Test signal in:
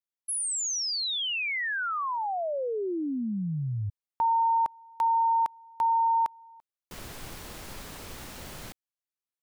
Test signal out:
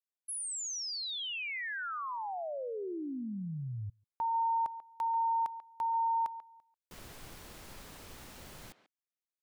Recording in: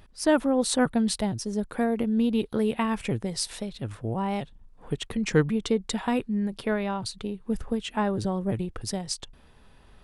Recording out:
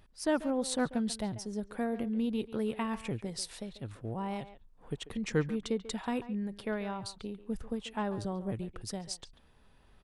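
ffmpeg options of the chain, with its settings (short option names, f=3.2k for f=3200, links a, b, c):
-filter_complex "[0:a]asplit=2[a][b];[b]adelay=140,highpass=300,lowpass=3.4k,asoftclip=type=hard:threshold=-18dB,volume=-13dB[c];[a][c]amix=inputs=2:normalize=0,volume=-8dB"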